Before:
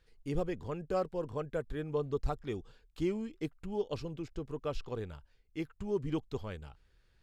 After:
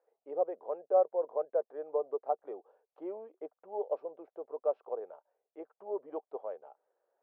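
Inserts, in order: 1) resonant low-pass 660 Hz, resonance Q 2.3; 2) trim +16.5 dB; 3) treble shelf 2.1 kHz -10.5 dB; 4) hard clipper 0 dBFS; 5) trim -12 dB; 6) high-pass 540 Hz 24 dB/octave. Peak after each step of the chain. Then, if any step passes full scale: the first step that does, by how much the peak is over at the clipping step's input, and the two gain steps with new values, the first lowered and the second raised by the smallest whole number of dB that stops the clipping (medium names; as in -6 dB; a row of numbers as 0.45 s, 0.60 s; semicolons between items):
-17.5 dBFS, -1.0 dBFS, -2.0 dBFS, -2.0 dBFS, -14.0 dBFS, -16.0 dBFS; nothing clips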